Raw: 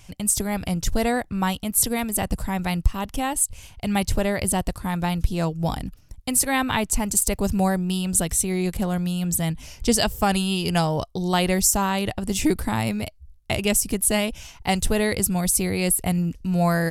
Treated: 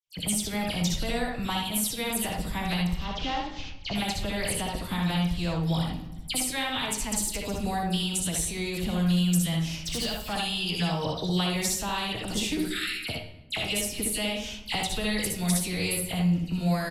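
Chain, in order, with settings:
0:02.96–0:03.95: variable-slope delta modulation 32 kbit/s
0:12.58–0:13.02: Butterworth high-pass 1,300 Hz 96 dB per octave
noise gate −38 dBFS, range −47 dB
parametric band 3,500 Hz +11.5 dB 1.1 octaves
downward compressor 6 to 1, threshold −29 dBFS, peak gain reduction 16.5 dB
all-pass dispersion lows, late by 72 ms, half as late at 2,700 Hz
0:09.52–0:10.33: gain into a clipping stage and back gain 29 dB
ambience of single reflections 62 ms −4.5 dB, 75 ms −5 dB
convolution reverb RT60 1.0 s, pre-delay 6 ms, DRR 6.5 dB

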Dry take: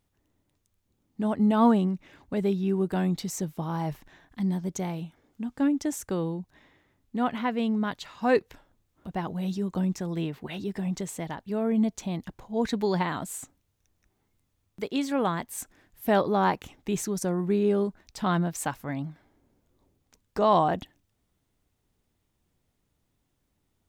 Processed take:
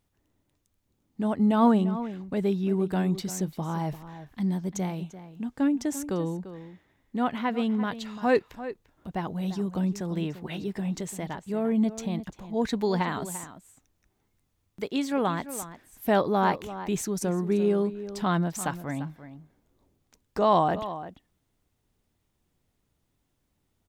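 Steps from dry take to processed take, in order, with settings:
slap from a distant wall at 59 metres, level −13 dB

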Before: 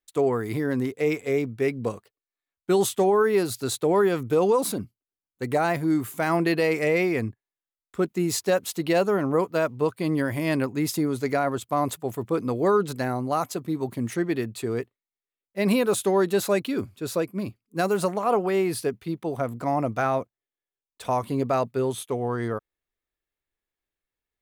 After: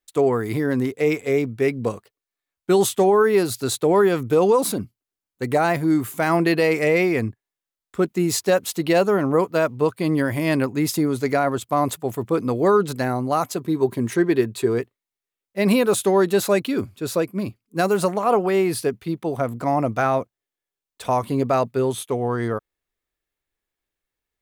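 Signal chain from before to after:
0:13.60–0:14.78: hollow resonant body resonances 390/1,000/1,600/3,800 Hz, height 8 dB
level +4 dB

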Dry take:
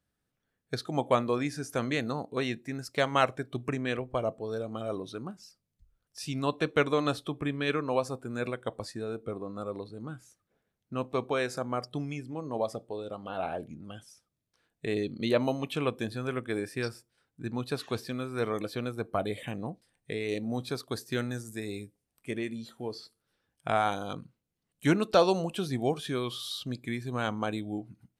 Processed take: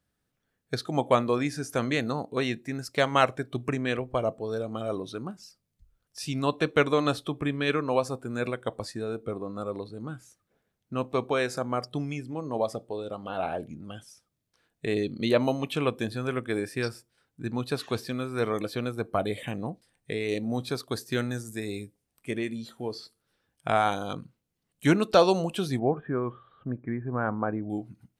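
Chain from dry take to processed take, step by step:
0:25.79–0:27.70: Butterworth low-pass 1,700 Hz 36 dB per octave
level +3 dB

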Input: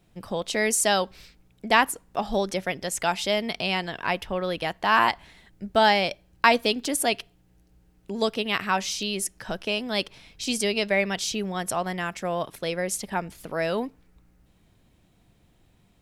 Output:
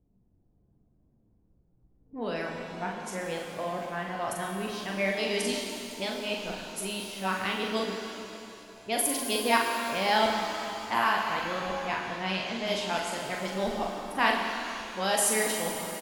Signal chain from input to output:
played backwards from end to start
parametric band 11,000 Hz +9 dB 0.3 octaves
low-pass that shuts in the quiet parts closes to 420 Hz, open at −19.5 dBFS
double-tracking delay 42 ms −5 dB
reverb with rising layers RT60 2.8 s, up +7 semitones, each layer −8 dB, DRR 2 dB
level −7.5 dB

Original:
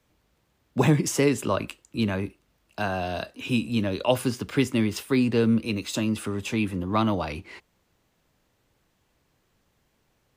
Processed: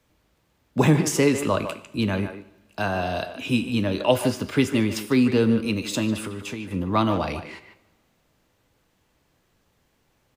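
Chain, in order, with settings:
0:06.16–0:06.71: downward compressor 6 to 1, threshold −32 dBFS, peak gain reduction 11 dB
far-end echo of a speakerphone 150 ms, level −9 dB
coupled-rooms reverb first 0.8 s, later 2 s, from −18 dB, DRR 12.5 dB
level +2 dB

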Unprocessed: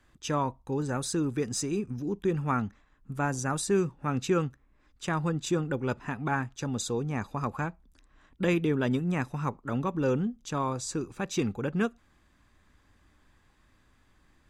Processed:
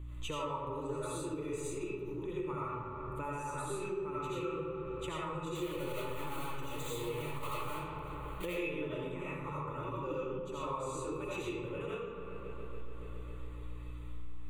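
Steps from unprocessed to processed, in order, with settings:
0:05.55–0:08.46: one scale factor per block 3 bits
tuned comb filter 860 Hz, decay 0.29 s, mix 80%
convolution reverb RT60 1.2 s, pre-delay 45 ms, DRR −8.5 dB
mains hum 60 Hz, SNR 21 dB
delay with a low-pass on its return 140 ms, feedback 79%, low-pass 2,100 Hz, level −16 dB
downward compressor 5 to 1, threshold −49 dBFS, peak gain reduction 20 dB
phaser with its sweep stopped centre 1,100 Hz, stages 8
level +15 dB

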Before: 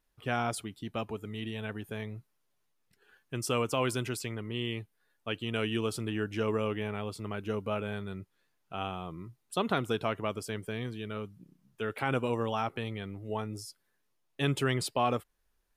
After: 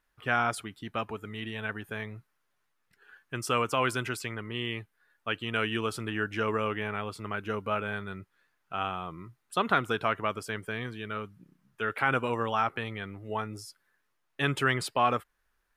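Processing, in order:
parametric band 1,500 Hz +10.5 dB 1.5 octaves
level −1.5 dB

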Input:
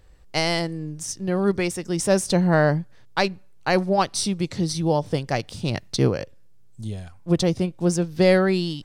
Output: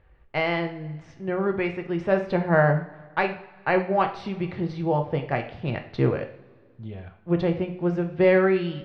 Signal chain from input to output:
low-pass filter 2,500 Hz 24 dB per octave
low-shelf EQ 480 Hz −5.5 dB
coupled-rooms reverb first 0.48 s, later 1.9 s, from −18 dB, DRR 4.5 dB

